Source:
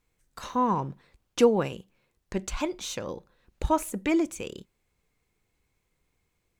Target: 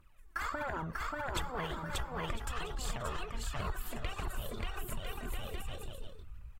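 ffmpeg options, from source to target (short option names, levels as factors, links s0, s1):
-af "aphaser=in_gain=1:out_gain=1:delay=3.8:decay=0.72:speed=1.4:type=triangular,equalizer=f=500:t=o:w=1:g=-5,equalizer=f=1000:t=o:w=1:g=9,equalizer=f=4000:t=o:w=1:g=-7,equalizer=f=8000:t=o:w=1:g=-6,afftfilt=real='re*lt(hypot(re,im),0.251)':imag='im*lt(hypot(re,im),0.251)':win_size=1024:overlap=0.75,aecho=1:1:590|1003|1292|1494|1636:0.631|0.398|0.251|0.158|0.1,asubboost=boost=9:cutoff=86,asetrate=52444,aresample=44100,atempo=0.840896,acompressor=threshold=0.0141:ratio=6,volume=1.41" -ar 44100 -c:a aac -b:a 48k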